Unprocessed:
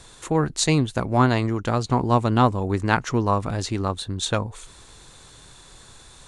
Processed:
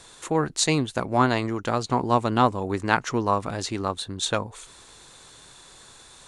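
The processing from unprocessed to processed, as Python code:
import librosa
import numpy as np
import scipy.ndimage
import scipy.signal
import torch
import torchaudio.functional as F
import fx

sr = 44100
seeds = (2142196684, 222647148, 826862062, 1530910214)

y = fx.low_shelf(x, sr, hz=150.0, db=-11.5)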